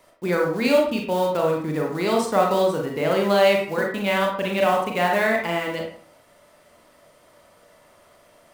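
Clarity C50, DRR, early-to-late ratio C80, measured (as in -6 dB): 3.5 dB, -0.5 dB, 8.0 dB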